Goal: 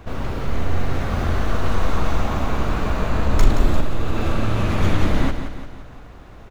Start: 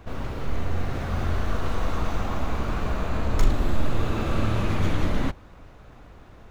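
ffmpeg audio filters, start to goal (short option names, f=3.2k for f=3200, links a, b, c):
-filter_complex "[0:a]aecho=1:1:174|348|522|696|870:0.355|0.17|0.0817|0.0392|0.0188,asettb=1/sr,asplit=3[a][b][c];[a]atrim=end=3.804[d];[b]atrim=start=3.8:end=4.78,asetpts=PTS-STARTPTS,afade=t=in:d=0.004:c=qsin,afade=t=out:st=0.976:d=0.004:c=qsin,acompressor=threshold=-18dB:ratio=6[e];[c]atrim=start=4.776[f];[d][e]acrossfade=d=0.004:c1=hsin:c2=qsin[g];[g][f]acrossfade=d=0.004:c1=qsin:c2=hsin,volume=5dB"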